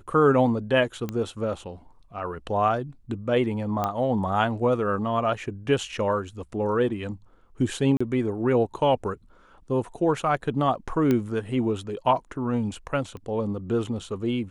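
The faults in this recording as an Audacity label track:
1.090000	1.090000	pop -17 dBFS
3.840000	3.840000	pop -13 dBFS
7.970000	8.010000	dropout 35 ms
11.110000	11.110000	pop -12 dBFS
13.170000	13.170000	pop -28 dBFS

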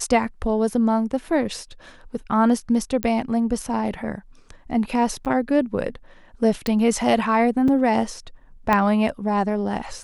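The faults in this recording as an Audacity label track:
3.030000	3.030000	pop -9 dBFS
5.250000	5.260000	dropout 8.5 ms
6.670000	6.670000	pop
7.680000	7.680000	dropout 3.7 ms
8.730000	8.730000	pop -7 dBFS

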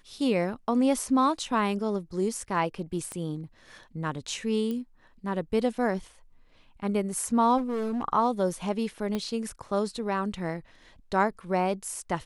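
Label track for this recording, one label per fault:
3.120000	3.120000	pop -23 dBFS
4.710000	4.710000	pop -22 dBFS
7.570000	8.030000	clipped -26.5 dBFS
9.150000	9.150000	pop -18 dBFS

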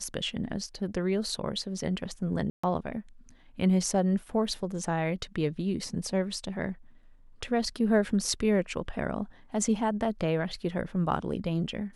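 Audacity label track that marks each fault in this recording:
2.500000	2.630000	dropout 135 ms

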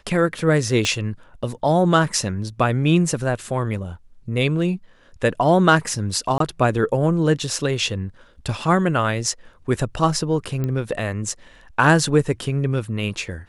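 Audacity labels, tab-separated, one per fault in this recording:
0.850000	0.850000	pop -8 dBFS
6.380000	6.400000	dropout 23 ms
10.640000	10.640000	pop -14 dBFS

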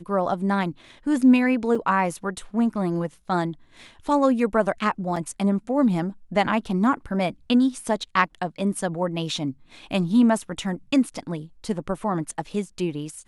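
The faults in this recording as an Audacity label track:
1.750000	1.750000	dropout 4.4 ms
5.160000	5.160000	dropout 4.2 ms
9.920000	9.920000	dropout 2.3 ms

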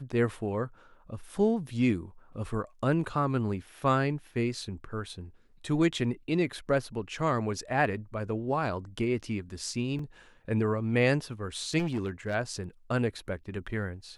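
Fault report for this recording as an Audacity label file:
9.990000	9.990000	dropout 3.3 ms
11.780000	12.350000	clipped -26.5 dBFS

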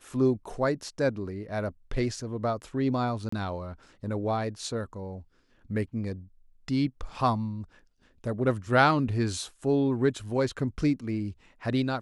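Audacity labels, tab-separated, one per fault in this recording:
3.290000	3.320000	dropout 34 ms

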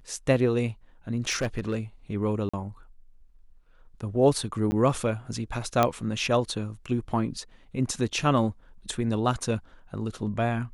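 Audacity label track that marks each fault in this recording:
1.300000	1.790000	clipped -22 dBFS
2.490000	2.540000	dropout 45 ms
4.710000	4.720000	dropout 10 ms
5.830000	5.830000	pop -8 dBFS

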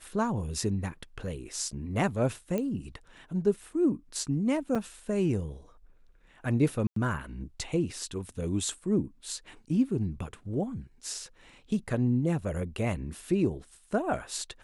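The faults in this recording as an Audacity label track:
2.580000	2.580000	pop -19 dBFS
4.750000	4.760000	dropout 5.1 ms
6.870000	6.960000	dropout 93 ms

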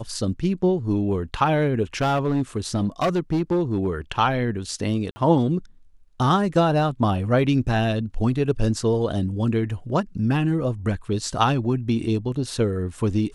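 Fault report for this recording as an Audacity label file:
2.010000	3.910000	clipped -17 dBFS
5.110000	5.160000	dropout 50 ms

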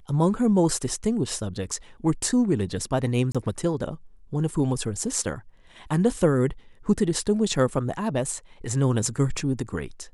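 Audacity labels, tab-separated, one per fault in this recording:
3.320000	3.350000	dropout 26 ms

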